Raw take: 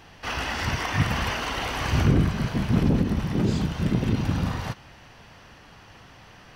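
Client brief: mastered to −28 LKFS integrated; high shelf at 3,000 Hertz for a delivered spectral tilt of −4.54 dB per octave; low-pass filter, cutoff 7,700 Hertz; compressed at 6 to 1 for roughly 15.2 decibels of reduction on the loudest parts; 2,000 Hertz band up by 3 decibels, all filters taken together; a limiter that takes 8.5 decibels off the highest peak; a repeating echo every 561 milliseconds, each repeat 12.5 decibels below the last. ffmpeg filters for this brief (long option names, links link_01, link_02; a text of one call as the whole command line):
ffmpeg -i in.wav -af "lowpass=7700,equalizer=frequency=2000:width_type=o:gain=6,highshelf=frequency=3000:gain=-6.5,acompressor=threshold=-33dB:ratio=6,alimiter=level_in=7dB:limit=-24dB:level=0:latency=1,volume=-7dB,aecho=1:1:561|1122|1683:0.237|0.0569|0.0137,volume=12.5dB" out.wav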